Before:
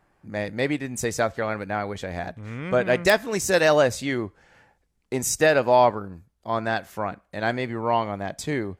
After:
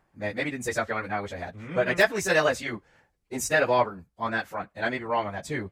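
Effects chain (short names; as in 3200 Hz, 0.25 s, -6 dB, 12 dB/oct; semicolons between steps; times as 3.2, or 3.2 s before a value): plain phase-vocoder stretch 0.65×; dynamic EQ 1800 Hz, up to +6 dB, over -39 dBFS, Q 0.75; gain -1.5 dB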